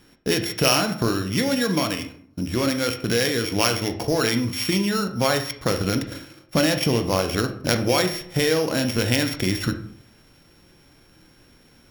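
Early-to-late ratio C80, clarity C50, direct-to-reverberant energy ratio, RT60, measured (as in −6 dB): 14.0 dB, 10.5 dB, 6.0 dB, 0.55 s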